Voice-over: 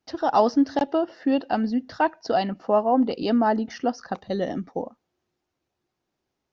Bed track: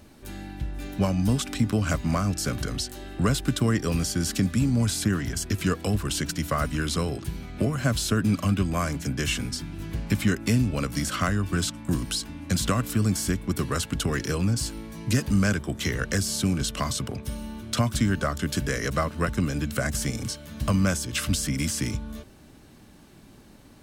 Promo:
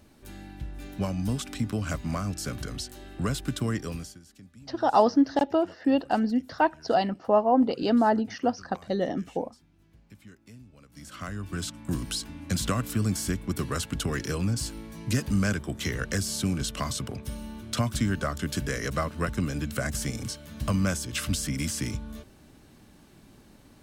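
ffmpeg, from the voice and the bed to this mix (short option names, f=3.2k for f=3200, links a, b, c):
-filter_complex "[0:a]adelay=4600,volume=-1dB[a];[1:a]volume=18.5dB,afade=t=out:st=3.75:d=0.45:silence=0.0841395,afade=t=in:st=10.88:d=1.19:silence=0.0630957[b];[a][b]amix=inputs=2:normalize=0"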